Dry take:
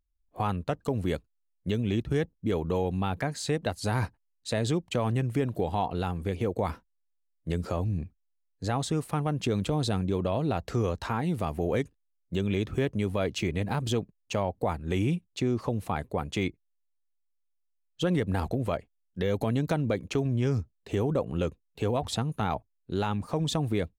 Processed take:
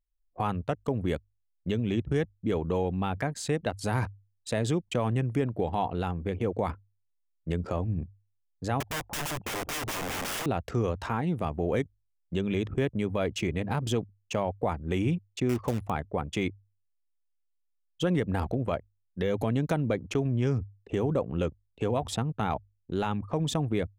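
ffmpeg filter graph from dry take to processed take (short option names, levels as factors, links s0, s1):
-filter_complex "[0:a]asettb=1/sr,asplit=3[s0][s1][s2];[s0]atrim=end=8.804[s3];[s1]atrim=start=8.8:end=10.46,asetpts=PTS-STARTPTS,afade=t=in:d=0.004:c=qsin,afade=t=out:st=1.656:d=0.004:c=qsin,lowpass=f=820:t=q:w=3.8,aeval=exprs='(mod(25.1*val(0)+1,2)-1)/25.1':c=same[s4];[s2]atrim=start=10.456[s5];[s3][s4]acrossfade=d=0.004:c1=hsin:c2=qsin[s6];[s6][s5]acrossfade=d=0.004:c1=qsin:c2=hsin,asettb=1/sr,asplit=3[s7][s8][s9];[s7]atrim=end=15.494[s10];[s8]atrim=start=15.49:end=15.9,asetpts=PTS-STARTPTS,afade=t=in:d=0.004:c=qsin,afade=t=out:st=0.406:d=0.004:c=qsin,equalizer=f=69:w=6.7:g=10.5,acrusher=bits=3:mode=log:mix=0:aa=0.000001[s11];[s9]atrim=start=15.896[s12];[s10][s11]acrossfade=d=0.004:c1=hsin:c2=qsin[s13];[s13][s12]acrossfade=d=0.004:c1=qsin:c2=hsin,anlmdn=0.251,equalizer=f=4200:t=o:w=0.32:g=-6,bandreject=f=50:t=h:w=6,bandreject=f=100:t=h:w=6"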